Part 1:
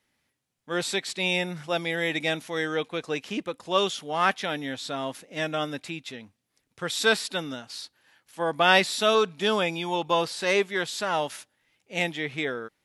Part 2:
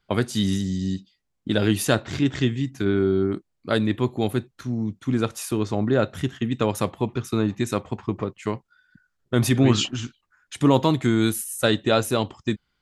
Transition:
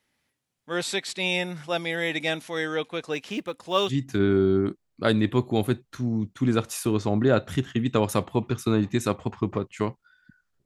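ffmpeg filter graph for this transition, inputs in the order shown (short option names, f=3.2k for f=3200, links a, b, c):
-filter_complex "[0:a]asettb=1/sr,asplit=3[a][b][c];[a]atrim=end=3.134[d];[b]atrim=start=3.13:end=3.93,asetpts=PTS-STARTPTS,afade=t=in:d=0.004:c=qsin,afade=t=out:st=0.796:d=0.004:c=qsin,acrusher=bits=9:mode=log:mix=0:aa=0.000001[e];[c]atrim=start=3.926[f];[d][e]acrossfade=d=0.004:c1=hsin:c2=qsin[g];[g][f]acrossfade=d=0.004:c1=qsin:c2=hsin,apad=whole_dur=10.65,atrim=end=10.65,atrim=end=3.93,asetpts=PTS-STARTPTS[h];[1:a]atrim=start=2.53:end=9.31,asetpts=PTS-STARTPTS[i];[h][i]acrossfade=d=0.06:c1=tri:c2=tri"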